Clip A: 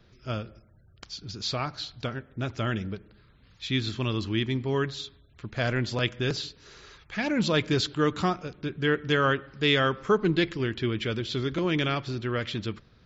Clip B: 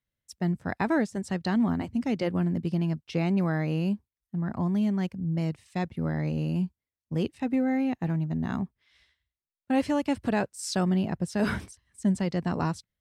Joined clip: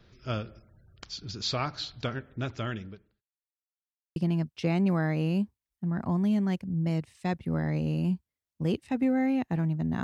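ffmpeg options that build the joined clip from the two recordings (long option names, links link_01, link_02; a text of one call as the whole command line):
ffmpeg -i cue0.wav -i cue1.wav -filter_complex "[0:a]apad=whole_dur=10.03,atrim=end=10.03,asplit=2[link_01][link_02];[link_01]atrim=end=3.22,asetpts=PTS-STARTPTS,afade=type=out:start_time=2.27:duration=0.95[link_03];[link_02]atrim=start=3.22:end=4.16,asetpts=PTS-STARTPTS,volume=0[link_04];[1:a]atrim=start=2.67:end=8.54,asetpts=PTS-STARTPTS,afade=type=in:duration=0.004:curve=hsin[link_05];[link_03][link_04][link_05]concat=n=3:v=0:a=1" out.wav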